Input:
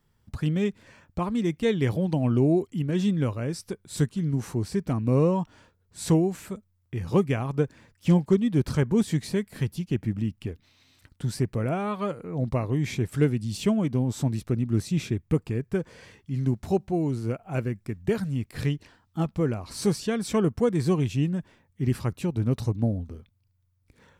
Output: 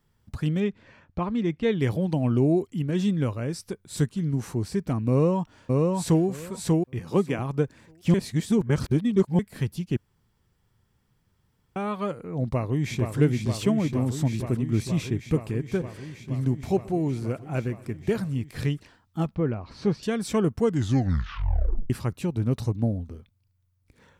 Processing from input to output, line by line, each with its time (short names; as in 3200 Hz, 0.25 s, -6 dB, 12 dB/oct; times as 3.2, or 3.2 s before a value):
0.6–1.8 LPF 3900 Hz
5.1–6.24 echo throw 0.59 s, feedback 15%, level -1.5 dB
6.99–7.39 Chebyshev high-pass 200 Hz
8.14–9.39 reverse
9.97–11.76 room tone
12.44–13.16 echo throw 0.47 s, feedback 85%, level -5.5 dB
15.42–18.07 feedback echo 0.124 s, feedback 60%, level -23 dB
19.35–20.03 air absorption 240 m
20.6 tape stop 1.30 s